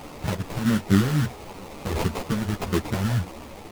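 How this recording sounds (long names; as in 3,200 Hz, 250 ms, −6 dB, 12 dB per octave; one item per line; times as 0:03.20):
a quantiser's noise floor 6 bits, dither triangular
phaser sweep stages 2, 1.5 Hz, lowest notch 460–2,000 Hz
aliases and images of a low sample rate 1,600 Hz, jitter 20%
a shimmering, thickened sound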